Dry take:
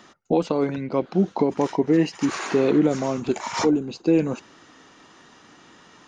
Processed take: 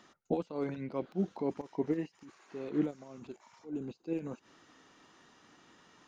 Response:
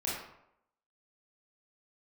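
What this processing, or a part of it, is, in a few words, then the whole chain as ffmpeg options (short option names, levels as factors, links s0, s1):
de-esser from a sidechain: -filter_complex "[0:a]asplit=2[s0][s1];[s1]highpass=f=4900:w=0.5412,highpass=f=4900:w=1.3066,apad=whole_len=267816[s2];[s0][s2]sidechaincompress=threshold=0.00141:ratio=16:attack=0.59:release=85,volume=0.355"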